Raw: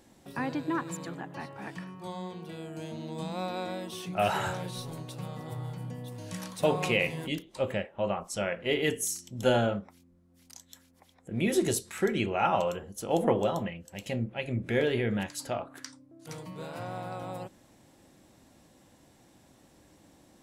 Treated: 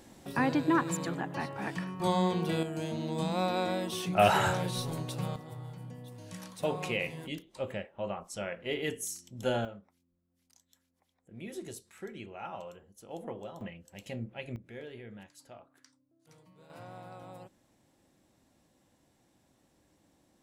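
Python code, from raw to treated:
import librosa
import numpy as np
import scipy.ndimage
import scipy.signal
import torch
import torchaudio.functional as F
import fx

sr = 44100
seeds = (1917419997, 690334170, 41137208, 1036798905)

y = fx.gain(x, sr, db=fx.steps((0.0, 4.5), (2.0, 11.0), (2.63, 4.0), (5.36, -6.0), (9.65, -15.5), (13.61, -7.0), (14.56, -18.0), (16.7, -9.5)))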